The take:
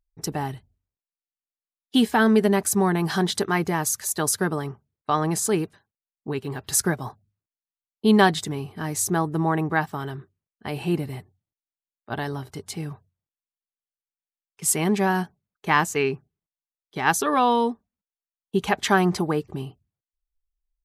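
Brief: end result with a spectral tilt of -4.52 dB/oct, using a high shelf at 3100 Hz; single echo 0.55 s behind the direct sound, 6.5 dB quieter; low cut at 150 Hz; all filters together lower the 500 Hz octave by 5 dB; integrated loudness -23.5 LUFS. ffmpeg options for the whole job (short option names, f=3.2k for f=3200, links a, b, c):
-af "highpass=150,equalizer=f=500:t=o:g=-6.5,highshelf=f=3.1k:g=-6,aecho=1:1:550:0.473,volume=3dB"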